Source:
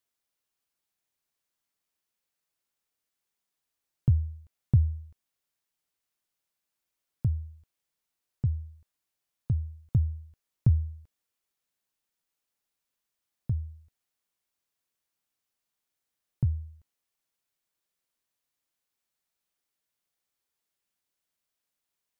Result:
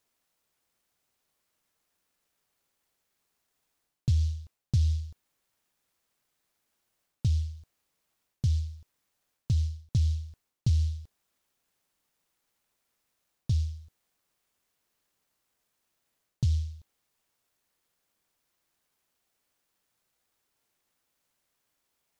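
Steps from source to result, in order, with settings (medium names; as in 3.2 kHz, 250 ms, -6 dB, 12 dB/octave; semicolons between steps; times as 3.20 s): reverse; compression 4:1, threshold -32 dBFS, peak gain reduction 14 dB; reverse; delay time shaken by noise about 4.4 kHz, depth 0.095 ms; trim +8 dB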